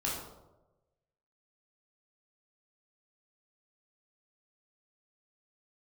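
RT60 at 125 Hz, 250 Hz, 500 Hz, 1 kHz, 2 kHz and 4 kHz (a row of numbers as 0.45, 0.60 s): 1.3, 1.0, 1.2, 0.90, 0.60, 0.55 s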